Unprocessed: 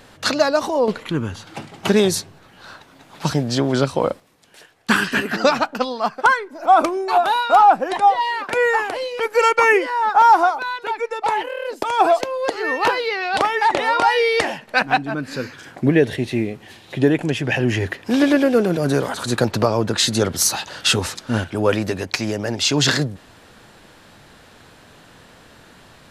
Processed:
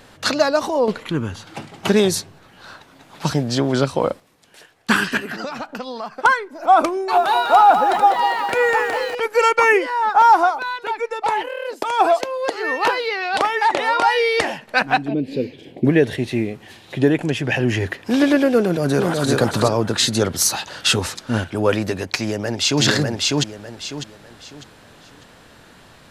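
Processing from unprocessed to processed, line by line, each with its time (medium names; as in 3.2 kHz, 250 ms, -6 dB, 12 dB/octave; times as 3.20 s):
5.17–6.25 s: compression 12:1, threshold -24 dBFS
6.93–9.15 s: bit-crushed delay 199 ms, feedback 55%, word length 7-bit, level -7 dB
11.49–14.39 s: bass shelf 130 Hz -10.5 dB
15.08–15.85 s: FFT filter 110 Hz 0 dB, 220 Hz +4 dB, 430 Hz +8 dB, 780 Hz -6 dB, 1.4 kHz -26 dB, 2.2 kHz -4 dB, 3.3 kHz 0 dB, 6.2 kHz -15 dB, 12 kHz -11 dB
18.61–19.31 s: echo throw 370 ms, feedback 20%, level -1.5 dB
22.17–22.83 s: echo throw 600 ms, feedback 30%, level -1 dB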